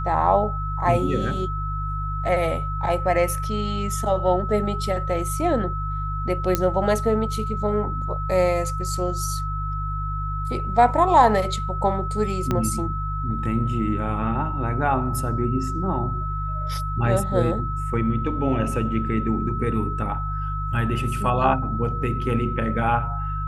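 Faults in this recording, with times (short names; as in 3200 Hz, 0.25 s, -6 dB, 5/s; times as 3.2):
hum 50 Hz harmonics 3 -28 dBFS
tone 1300 Hz -29 dBFS
6.55 pop -5 dBFS
12.51 pop -10 dBFS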